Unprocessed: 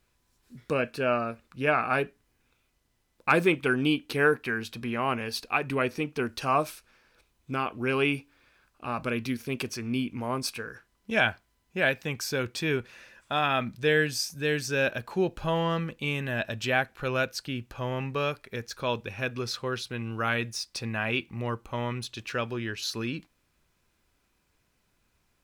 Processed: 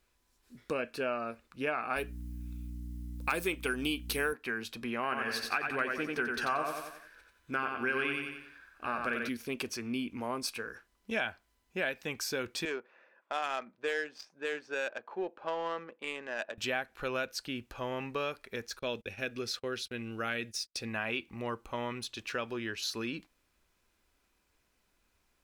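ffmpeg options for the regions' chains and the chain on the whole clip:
-filter_complex "[0:a]asettb=1/sr,asplit=3[s0][s1][s2];[s0]atrim=end=1.964[s3];[s1]atrim=start=1.96:end=4.33,asetpts=PTS-STARTPTS,afade=t=in:d=0.004:c=qsin,afade=t=out:st=2.366:d=0.004:c=qsin,aemphasis=mode=production:type=75kf,aeval=exprs='val(0)+0.0178*(sin(2*PI*60*n/s)+sin(2*PI*2*60*n/s)/2+sin(2*PI*3*60*n/s)/3+sin(2*PI*4*60*n/s)/4+sin(2*PI*5*60*n/s)/5)':c=same[s4];[s2]atrim=start=4.326[s5];[s3][s4]acrossfade=d=0.004:c1=hsin:c2=qsin[s6];[s6][s5]acrossfade=d=0.004:c1=qsin:c2=hsin,asettb=1/sr,asplit=3[s7][s8][s9];[s7]atrim=end=5.034[s10];[s8]atrim=start=5.03:end=9.29,asetpts=PTS-STARTPTS,afade=t=in:d=0.004:c=qsin,afade=t=out:st=4.256:d=0.004:c=qsin,equalizer=f=1600:w=3:g=13,asplit=2[s11][s12];[s12]adelay=13,volume=0.224[s13];[s11][s13]amix=inputs=2:normalize=0,atrim=end_sample=187866,aecho=1:1:90|180|270|360|450:0.596|0.238|0.0953|0.0381|0.0152,atrim=end_sample=187866[s14];[s9]atrim=start=9.286[s15];[s10][s14]acrossfade=d=0.004:c1=hsin:c2=qsin[s16];[s16][s15]acrossfade=d=0.004:c1=qsin:c2=hsin,asettb=1/sr,asplit=3[s17][s18][s19];[s17]atrim=end=12.654[s20];[s18]atrim=start=12.65:end=16.58,asetpts=PTS-STARTPTS,afade=t=in:d=0.004:c=qsin,afade=t=out:st=3.926:d=0.004:c=qsin,highpass=450,adynamicsmooth=sensitivity=1.5:basefreq=1200[s21];[s19]atrim=start=16.576[s22];[s20][s21]acrossfade=d=0.004:c1=hsin:c2=qsin[s23];[s23][s22]acrossfade=d=0.004:c1=qsin:c2=hsin,asettb=1/sr,asplit=3[s24][s25][s26];[s24]atrim=end=18.794[s27];[s25]atrim=start=18.79:end=20.88,asetpts=PTS-STARTPTS,afade=t=in:d=0.004:c=qsin,afade=t=out:st=2.086:d=0.004:c=qsin,equalizer=f=1000:t=o:w=0.6:g=-10,agate=range=0.0316:threshold=0.00708:ratio=16:release=100:detection=peak[s28];[s26]atrim=start=20.876[s29];[s27][s28]acrossfade=d=0.004:c1=hsin:c2=qsin[s30];[s30][s29]acrossfade=d=0.004:c1=qsin:c2=hsin,equalizer=f=130:w=1.6:g=-10.5,acompressor=threshold=0.0355:ratio=3,volume=0.794"

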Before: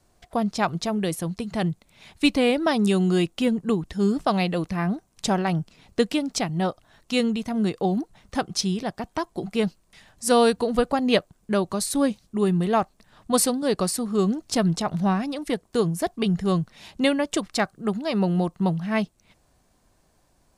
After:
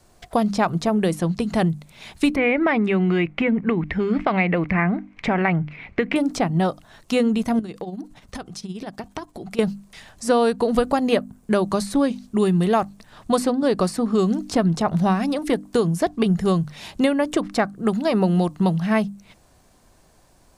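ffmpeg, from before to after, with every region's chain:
-filter_complex "[0:a]asettb=1/sr,asplit=3[s0][s1][s2];[s0]atrim=end=2.364[s3];[s1]atrim=start=2.36:end=6.16,asetpts=PTS-STARTPTS,afade=t=in:d=0.004:c=qsin,afade=t=out:st=3.796:d=0.004:c=qsin,acompressor=threshold=0.0794:ratio=4:attack=3.2:release=140:knee=1:detection=peak,lowpass=f=2200:t=q:w=7[s4];[s2]atrim=start=6.156[s5];[s3][s4]acrossfade=d=0.004:c1=hsin:c2=qsin[s6];[s6][s5]acrossfade=d=0.004:c1=qsin:c2=hsin,asettb=1/sr,asplit=3[s7][s8][s9];[s7]atrim=end=7.594[s10];[s8]atrim=start=7.59:end=9.59,asetpts=PTS-STARTPTS,afade=t=in:d=0.004:c=qsin,afade=t=out:st=1.996:d=0.004:c=qsin,acompressor=threshold=0.02:ratio=6:attack=3.2:release=140:knee=1:detection=peak,tremolo=f=17:d=0.62[s11];[s9]atrim=start=9.586[s12];[s10][s11]acrossfade=d=0.004:c1=hsin:c2=qsin[s13];[s13][s12]acrossfade=d=0.004:c1=qsin:c2=hsin,bandreject=f=50:t=h:w=6,bandreject=f=100:t=h:w=6,bandreject=f=150:t=h:w=6,bandreject=f=200:t=h:w=6,bandreject=f=250:t=h:w=6,bandreject=f=300:t=h:w=6,acrossover=split=2100|7300[s14][s15][s16];[s14]acompressor=threshold=0.0631:ratio=4[s17];[s15]acompressor=threshold=0.00501:ratio=4[s18];[s16]acompressor=threshold=0.00251:ratio=4[s19];[s17][s18][s19]amix=inputs=3:normalize=0,volume=2.51"

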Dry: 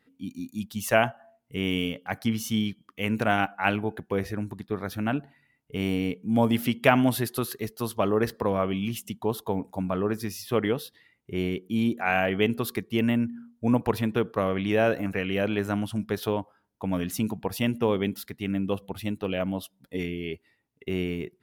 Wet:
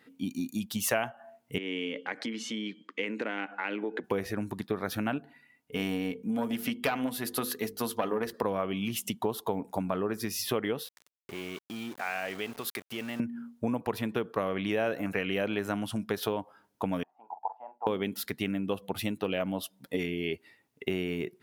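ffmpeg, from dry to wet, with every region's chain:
-filter_complex "[0:a]asettb=1/sr,asplit=3[s0][s1][s2];[s0]atrim=end=1.584[s3];[s1]atrim=start=1.58:end=4.04,asetpts=PTS-STARTPTS,afade=t=in:d=0.004:c=qsin,afade=t=out:st=2.456:d=0.004:c=qsin,acompressor=threshold=0.0141:ratio=5:attack=3.2:release=140:knee=1:detection=peak,highpass=f=210:w=0.5412,highpass=f=210:w=1.3066,equalizer=f=320:t=q:w=4:g=6,equalizer=f=480:t=q:w=4:g=6,equalizer=f=720:t=q:w=4:g=-8,equalizer=f=1200:t=q:w=4:g=-3,equalizer=f=2000:t=q:w=4:g=6,equalizer=f=5700:t=q:w=4:g=-7,lowpass=f=6700:w=0.5412,lowpass=f=6700:w=1.3066[s4];[s2]atrim=start=4.036[s5];[s3][s4]acrossfade=d=0.004:c1=hsin:c2=qsin[s6];[s6][s5]acrossfade=d=0.004:c1=qsin:c2=hsin,asettb=1/sr,asplit=3[s7][s8][s9];[s7]atrim=end=5.184[s10];[s8]atrim=start=5.18:end=8.34,asetpts=PTS-STARTPTS,afade=t=in:d=0.004:c=qsin,afade=t=out:st=3.156:d=0.004:c=qsin,bandreject=f=50:t=h:w=6,bandreject=f=100:t=h:w=6,bandreject=f=150:t=h:w=6,bandreject=f=200:t=h:w=6,bandreject=f=250:t=h:w=6,bandreject=f=300:t=h:w=6,bandreject=f=350:t=h:w=6,bandreject=f=400:t=h:w=6,bandreject=f=450:t=h:w=6,bandreject=f=500:t=h:w=6,aecho=1:1:4.1:0.36,atrim=end_sample=139356,aeval=exprs='(tanh(3.16*val(0)+0.75)-tanh(0.75))/3.16':c=same[s11];[s9]atrim=start=8.336[s12];[s10][s11]acrossfade=d=0.004:c1=hsin:c2=qsin[s13];[s13][s12]acrossfade=d=0.004:c1=qsin:c2=hsin,asettb=1/sr,asplit=3[s14][s15][s16];[s14]atrim=end=10.834[s17];[s15]atrim=start=10.83:end=13.2,asetpts=PTS-STARTPTS,afade=t=in:d=0.004:c=qsin,afade=t=out:st=2.366:d=0.004:c=qsin,acompressor=threshold=0.01:ratio=3:attack=3.2:release=140:knee=1:detection=peak,lowshelf=f=450:g=-7.5,aeval=exprs='val(0)*gte(abs(val(0)),0.00316)':c=same[s18];[s16]atrim=start=13.196[s19];[s17][s18]acrossfade=d=0.004:c1=hsin:c2=qsin[s20];[s20][s19]acrossfade=d=0.004:c1=qsin:c2=hsin,asettb=1/sr,asplit=3[s21][s22][s23];[s21]atrim=end=17.034[s24];[s22]atrim=start=17.03:end=17.87,asetpts=PTS-STARTPTS,afade=t=in:d=0.004:c=qsin,afade=t=out:st=0.836:d=0.004:c=qsin,deesser=0.95,asuperpass=centerf=820:order=4:qfactor=4.6,asplit=2[s25][s26];[s26]adelay=44,volume=0.237[s27];[s25][s27]amix=inputs=2:normalize=0,atrim=end_sample=37044[s28];[s23]atrim=start=17.866[s29];[s24][s28]acrossfade=d=0.004:c1=hsin:c2=qsin[s30];[s30][s29]acrossfade=d=0.004:c1=qsin:c2=hsin,acompressor=threshold=0.02:ratio=6,highpass=f=220:p=1,volume=2.51"

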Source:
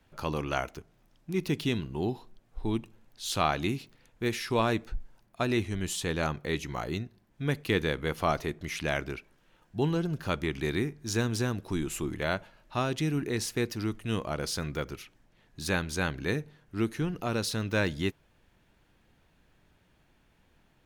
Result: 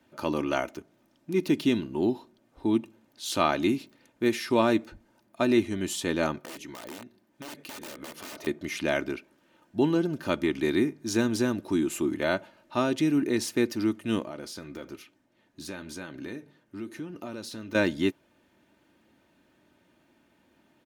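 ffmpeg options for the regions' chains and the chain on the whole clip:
-filter_complex "[0:a]asettb=1/sr,asplit=3[s0][s1][s2];[s0]atrim=end=6.394[s3];[s1]atrim=start=6.39:end=8.47,asetpts=PTS-STARTPTS,afade=t=in:d=0.004:c=qsin,afade=t=out:st=2.076:d=0.004:c=qsin,aeval=exprs='(mod(22.4*val(0)+1,2)-1)/22.4':c=same,lowshelf=f=210:g=-6.5,acompressor=threshold=0.01:ratio=10:attack=3.2:release=140:knee=1:detection=peak[s4];[s2]atrim=start=8.466[s5];[s3][s4]acrossfade=d=0.004:c1=hsin:c2=qsin[s6];[s6][s5]acrossfade=d=0.004:c1=qsin:c2=hsin,asettb=1/sr,asplit=3[s7][s8][s9];[s7]atrim=end=14.244[s10];[s8]atrim=start=14.24:end=17.75,asetpts=PTS-STARTPTS,afade=t=in:d=0.004:c=qsin,afade=t=out:st=3.506:d=0.004:c=qsin,acompressor=threshold=0.0224:ratio=5:attack=3.2:release=140:knee=1:detection=peak,flanger=delay=5.8:depth=5.5:regen=-71:speed=1.1:shape=triangular[s11];[s9]atrim=start=17.746[s12];[s10][s11]acrossfade=d=0.004:c1=hsin:c2=qsin[s13];[s13][s12]acrossfade=d=0.004:c1=qsin:c2=hsin,highpass=230,lowshelf=f=380:g=10.5,aecho=1:1:3.3:0.46"

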